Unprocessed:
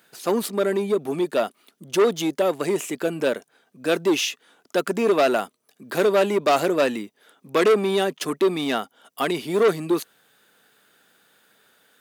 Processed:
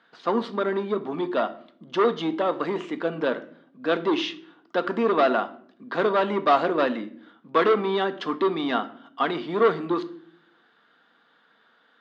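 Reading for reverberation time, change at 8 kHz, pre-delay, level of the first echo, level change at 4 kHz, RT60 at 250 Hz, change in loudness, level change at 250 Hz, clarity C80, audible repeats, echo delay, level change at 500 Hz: 0.55 s, below −20 dB, 4 ms, no echo audible, −4.0 dB, 0.90 s, −2.5 dB, −2.0 dB, 19.5 dB, no echo audible, no echo audible, −3.0 dB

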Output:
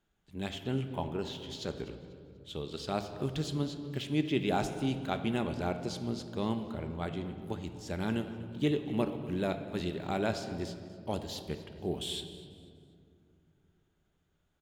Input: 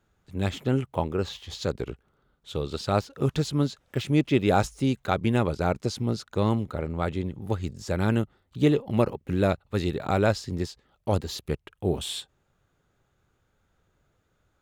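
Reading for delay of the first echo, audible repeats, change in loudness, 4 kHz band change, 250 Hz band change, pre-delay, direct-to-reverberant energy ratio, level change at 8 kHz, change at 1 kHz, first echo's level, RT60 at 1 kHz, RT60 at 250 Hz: 245 ms, 2, −8.0 dB, −4.0 dB, −7.0 dB, 3 ms, 7.5 dB, −7.0 dB, −8.0 dB, −19.0 dB, 2.0 s, 3.4 s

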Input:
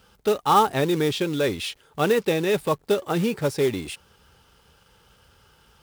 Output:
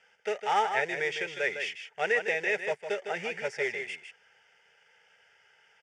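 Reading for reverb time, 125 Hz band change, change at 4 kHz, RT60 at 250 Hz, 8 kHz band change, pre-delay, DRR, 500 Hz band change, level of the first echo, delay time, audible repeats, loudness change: no reverb audible, −23.5 dB, −8.5 dB, no reverb audible, −11.0 dB, no reverb audible, no reverb audible, −9.5 dB, −8.0 dB, 156 ms, 1, −7.0 dB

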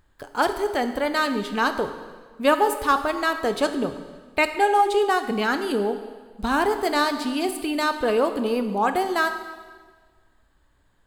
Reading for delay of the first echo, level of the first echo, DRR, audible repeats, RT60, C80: no echo audible, no echo audible, 8.0 dB, no echo audible, 1.5 s, 11.0 dB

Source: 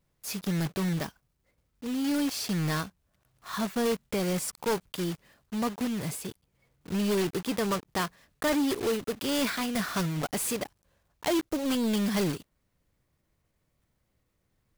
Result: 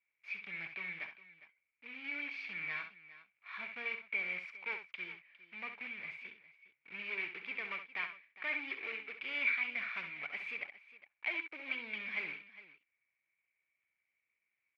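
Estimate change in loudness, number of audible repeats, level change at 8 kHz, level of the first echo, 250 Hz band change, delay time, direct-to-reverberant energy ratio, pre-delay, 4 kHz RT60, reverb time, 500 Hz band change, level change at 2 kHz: −9.5 dB, 2, below −40 dB, −9.0 dB, −28.5 dB, 66 ms, no reverb audible, no reverb audible, no reverb audible, no reverb audible, −23.0 dB, +1.5 dB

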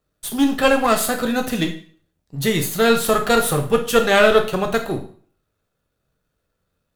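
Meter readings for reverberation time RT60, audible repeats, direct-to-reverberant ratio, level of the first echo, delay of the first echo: 0.45 s, no echo audible, 4.0 dB, no echo audible, no echo audible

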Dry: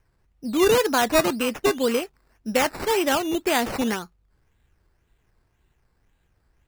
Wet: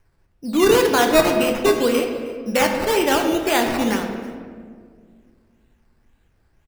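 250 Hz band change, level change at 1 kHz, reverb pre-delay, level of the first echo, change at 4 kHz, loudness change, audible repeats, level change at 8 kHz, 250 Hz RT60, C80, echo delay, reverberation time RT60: +4.5 dB, +4.0 dB, 3 ms, −21.5 dB, +3.5 dB, +4.0 dB, 1, +2.5 dB, 2.6 s, 6.5 dB, 316 ms, 2.0 s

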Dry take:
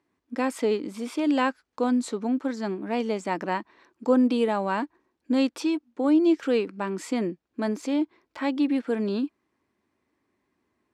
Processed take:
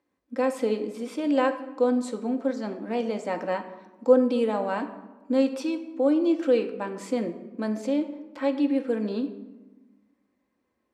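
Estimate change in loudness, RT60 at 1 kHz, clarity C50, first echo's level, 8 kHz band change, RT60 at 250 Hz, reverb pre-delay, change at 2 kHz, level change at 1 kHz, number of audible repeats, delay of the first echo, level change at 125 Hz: 0.0 dB, 1.2 s, 11.0 dB, no echo audible, can't be measured, 1.6 s, 4 ms, −3.0 dB, −2.0 dB, no echo audible, no echo audible, can't be measured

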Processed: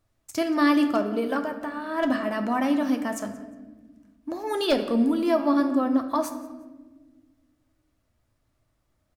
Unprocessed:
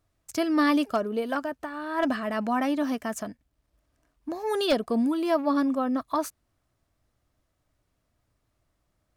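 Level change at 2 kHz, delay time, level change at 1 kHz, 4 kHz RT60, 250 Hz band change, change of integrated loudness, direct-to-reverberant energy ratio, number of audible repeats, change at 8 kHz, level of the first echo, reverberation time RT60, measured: +1.5 dB, 178 ms, +1.0 dB, 0.85 s, +3.0 dB, +2.0 dB, 5.5 dB, 2, +0.5 dB, −20.0 dB, 1.4 s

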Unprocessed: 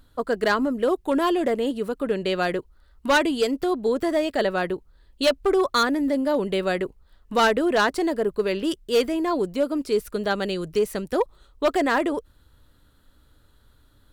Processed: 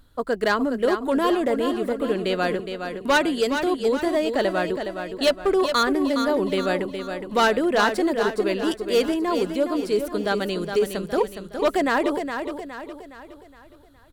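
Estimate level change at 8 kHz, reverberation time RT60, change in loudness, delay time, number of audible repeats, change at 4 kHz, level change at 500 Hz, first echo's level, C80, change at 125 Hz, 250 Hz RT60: +1.0 dB, no reverb audible, +0.5 dB, 415 ms, 4, +1.0 dB, +1.0 dB, −7.5 dB, no reverb audible, +1.0 dB, no reverb audible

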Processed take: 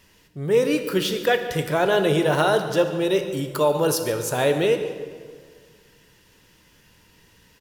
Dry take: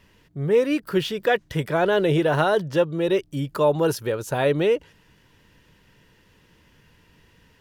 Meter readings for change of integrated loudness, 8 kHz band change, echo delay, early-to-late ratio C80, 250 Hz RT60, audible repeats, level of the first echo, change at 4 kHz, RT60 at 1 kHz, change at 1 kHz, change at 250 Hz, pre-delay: +0.5 dB, +9.0 dB, 143 ms, 9.0 dB, 2.0 s, 1, −18.0 dB, +4.0 dB, 1.6 s, +1.0 dB, 0.0 dB, 17 ms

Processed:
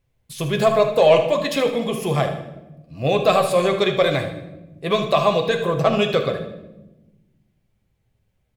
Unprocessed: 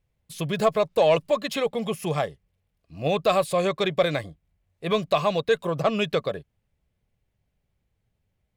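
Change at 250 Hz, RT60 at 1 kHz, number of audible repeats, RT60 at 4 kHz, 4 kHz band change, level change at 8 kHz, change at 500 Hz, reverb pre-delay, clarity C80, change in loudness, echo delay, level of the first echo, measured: +5.0 dB, 0.85 s, 1, 0.70 s, +5.5 dB, +5.0 dB, +5.5 dB, 8 ms, 11.5 dB, +5.0 dB, 77 ms, −11.5 dB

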